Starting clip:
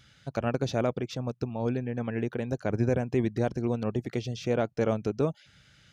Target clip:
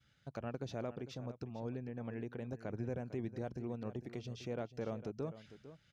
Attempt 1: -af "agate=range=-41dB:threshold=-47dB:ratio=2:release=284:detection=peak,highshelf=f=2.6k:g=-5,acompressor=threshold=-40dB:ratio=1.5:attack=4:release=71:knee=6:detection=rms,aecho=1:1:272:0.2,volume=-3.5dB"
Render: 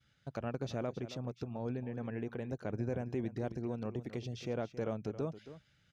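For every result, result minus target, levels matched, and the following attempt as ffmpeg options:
echo 0.18 s early; compressor: peak gain reduction -3.5 dB
-af "agate=range=-41dB:threshold=-47dB:ratio=2:release=284:detection=peak,highshelf=f=2.6k:g=-5,acompressor=threshold=-40dB:ratio=1.5:attack=4:release=71:knee=6:detection=rms,aecho=1:1:452:0.2,volume=-3.5dB"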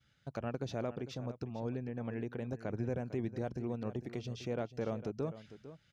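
compressor: peak gain reduction -3.5 dB
-af "agate=range=-41dB:threshold=-47dB:ratio=2:release=284:detection=peak,highshelf=f=2.6k:g=-5,acompressor=threshold=-51dB:ratio=1.5:attack=4:release=71:knee=6:detection=rms,aecho=1:1:452:0.2,volume=-3.5dB"

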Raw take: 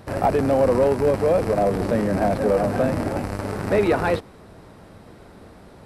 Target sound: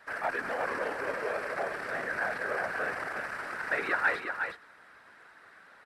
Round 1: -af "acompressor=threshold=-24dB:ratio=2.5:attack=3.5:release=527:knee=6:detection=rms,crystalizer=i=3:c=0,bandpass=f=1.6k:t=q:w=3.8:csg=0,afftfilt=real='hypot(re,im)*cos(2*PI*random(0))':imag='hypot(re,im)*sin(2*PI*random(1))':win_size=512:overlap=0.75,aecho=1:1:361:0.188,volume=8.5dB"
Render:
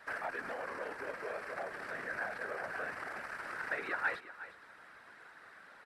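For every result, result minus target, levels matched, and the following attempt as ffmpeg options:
compressor: peak gain reduction +8.5 dB; echo-to-direct -8.5 dB
-af "crystalizer=i=3:c=0,bandpass=f=1.6k:t=q:w=3.8:csg=0,afftfilt=real='hypot(re,im)*cos(2*PI*random(0))':imag='hypot(re,im)*sin(2*PI*random(1))':win_size=512:overlap=0.75,aecho=1:1:361:0.188,volume=8.5dB"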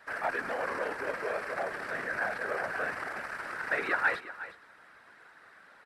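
echo-to-direct -8.5 dB
-af "crystalizer=i=3:c=0,bandpass=f=1.6k:t=q:w=3.8:csg=0,afftfilt=real='hypot(re,im)*cos(2*PI*random(0))':imag='hypot(re,im)*sin(2*PI*random(1))':win_size=512:overlap=0.75,aecho=1:1:361:0.501,volume=8.5dB"

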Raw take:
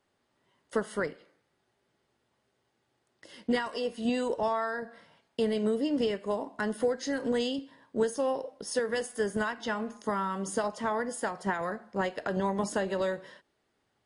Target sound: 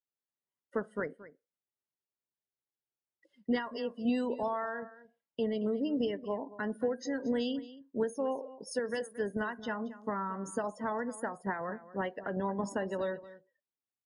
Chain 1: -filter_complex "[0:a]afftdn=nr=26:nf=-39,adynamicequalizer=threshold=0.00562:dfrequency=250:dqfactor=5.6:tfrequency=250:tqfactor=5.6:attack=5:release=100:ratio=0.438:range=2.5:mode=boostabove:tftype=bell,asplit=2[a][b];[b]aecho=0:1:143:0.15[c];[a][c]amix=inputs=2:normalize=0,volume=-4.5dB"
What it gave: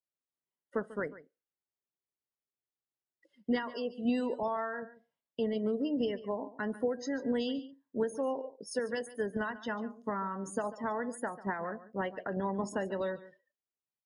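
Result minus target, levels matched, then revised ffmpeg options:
echo 83 ms early
-filter_complex "[0:a]afftdn=nr=26:nf=-39,adynamicequalizer=threshold=0.00562:dfrequency=250:dqfactor=5.6:tfrequency=250:tqfactor=5.6:attack=5:release=100:ratio=0.438:range=2.5:mode=boostabove:tftype=bell,asplit=2[a][b];[b]aecho=0:1:226:0.15[c];[a][c]amix=inputs=2:normalize=0,volume=-4.5dB"

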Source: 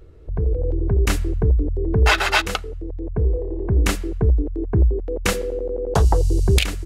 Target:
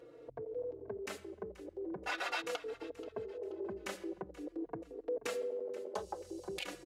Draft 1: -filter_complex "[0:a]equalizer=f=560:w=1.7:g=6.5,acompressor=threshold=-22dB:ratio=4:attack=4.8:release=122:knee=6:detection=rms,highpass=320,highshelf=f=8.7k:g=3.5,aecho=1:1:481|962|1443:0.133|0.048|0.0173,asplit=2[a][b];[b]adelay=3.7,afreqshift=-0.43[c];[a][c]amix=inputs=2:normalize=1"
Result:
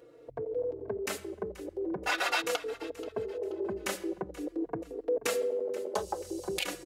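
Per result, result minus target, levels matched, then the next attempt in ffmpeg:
compressor: peak gain reduction -7.5 dB; 8000 Hz band +4.0 dB
-filter_complex "[0:a]equalizer=f=560:w=1.7:g=6.5,acompressor=threshold=-32dB:ratio=4:attack=4.8:release=122:knee=6:detection=rms,highpass=320,highshelf=f=8.7k:g=3.5,aecho=1:1:481|962|1443:0.133|0.048|0.0173,asplit=2[a][b];[b]adelay=3.7,afreqshift=-0.43[c];[a][c]amix=inputs=2:normalize=1"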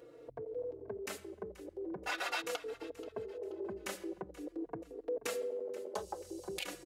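8000 Hz band +4.0 dB
-filter_complex "[0:a]equalizer=f=560:w=1.7:g=6.5,acompressor=threshold=-32dB:ratio=4:attack=4.8:release=122:knee=6:detection=rms,highpass=320,highshelf=f=8.7k:g=-7,aecho=1:1:481|962|1443:0.133|0.048|0.0173,asplit=2[a][b];[b]adelay=3.7,afreqshift=-0.43[c];[a][c]amix=inputs=2:normalize=1"

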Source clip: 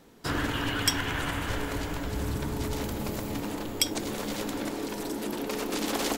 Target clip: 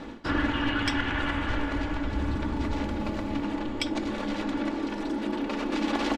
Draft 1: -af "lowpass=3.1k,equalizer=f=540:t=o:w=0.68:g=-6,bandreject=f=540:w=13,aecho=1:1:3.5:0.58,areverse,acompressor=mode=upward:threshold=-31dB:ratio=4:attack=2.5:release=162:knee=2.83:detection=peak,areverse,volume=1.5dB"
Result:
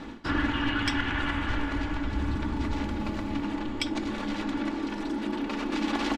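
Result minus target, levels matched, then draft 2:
500 Hz band -2.5 dB
-af "lowpass=3.1k,bandreject=f=540:w=13,aecho=1:1:3.5:0.58,areverse,acompressor=mode=upward:threshold=-31dB:ratio=4:attack=2.5:release=162:knee=2.83:detection=peak,areverse,volume=1.5dB"

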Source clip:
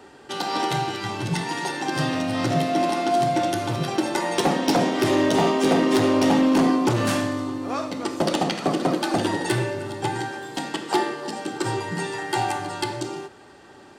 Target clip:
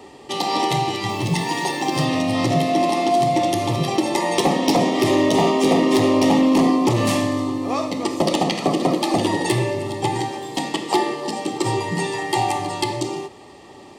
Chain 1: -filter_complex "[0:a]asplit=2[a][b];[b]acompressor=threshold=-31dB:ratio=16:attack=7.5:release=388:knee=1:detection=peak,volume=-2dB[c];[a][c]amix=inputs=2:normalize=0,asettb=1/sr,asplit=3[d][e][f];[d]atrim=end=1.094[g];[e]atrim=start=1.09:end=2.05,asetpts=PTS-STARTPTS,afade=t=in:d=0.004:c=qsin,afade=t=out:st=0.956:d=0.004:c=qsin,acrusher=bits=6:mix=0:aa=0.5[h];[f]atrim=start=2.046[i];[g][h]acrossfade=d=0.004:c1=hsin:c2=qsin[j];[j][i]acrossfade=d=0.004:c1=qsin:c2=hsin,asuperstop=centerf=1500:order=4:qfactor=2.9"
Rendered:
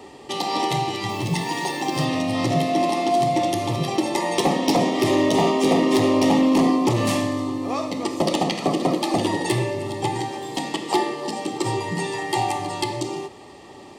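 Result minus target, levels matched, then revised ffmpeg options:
compressor: peak gain reduction +9.5 dB
-filter_complex "[0:a]asplit=2[a][b];[b]acompressor=threshold=-21dB:ratio=16:attack=7.5:release=388:knee=1:detection=peak,volume=-2dB[c];[a][c]amix=inputs=2:normalize=0,asettb=1/sr,asplit=3[d][e][f];[d]atrim=end=1.094[g];[e]atrim=start=1.09:end=2.05,asetpts=PTS-STARTPTS,afade=t=in:d=0.004:c=qsin,afade=t=out:st=0.956:d=0.004:c=qsin,acrusher=bits=6:mix=0:aa=0.5[h];[f]atrim=start=2.046[i];[g][h]acrossfade=d=0.004:c1=hsin:c2=qsin[j];[j][i]acrossfade=d=0.004:c1=qsin:c2=hsin,asuperstop=centerf=1500:order=4:qfactor=2.9"

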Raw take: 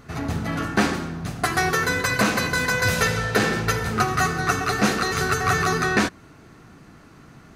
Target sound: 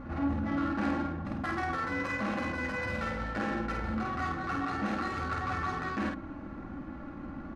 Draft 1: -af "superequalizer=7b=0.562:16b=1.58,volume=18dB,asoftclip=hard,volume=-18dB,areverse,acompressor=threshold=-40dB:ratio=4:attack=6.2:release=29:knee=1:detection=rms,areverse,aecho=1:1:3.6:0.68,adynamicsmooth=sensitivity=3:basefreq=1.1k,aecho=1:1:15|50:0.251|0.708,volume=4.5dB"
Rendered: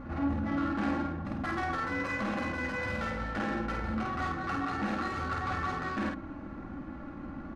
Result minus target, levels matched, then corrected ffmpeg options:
overloaded stage: distortion +34 dB
-af "superequalizer=7b=0.562:16b=1.58,volume=7.5dB,asoftclip=hard,volume=-7.5dB,areverse,acompressor=threshold=-40dB:ratio=4:attack=6.2:release=29:knee=1:detection=rms,areverse,aecho=1:1:3.6:0.68,adynamicsmooth=sensitivity=3:basefreq=1.1k,aecho=1:1:15|50:0.251|0.708,volume=4.5dB"

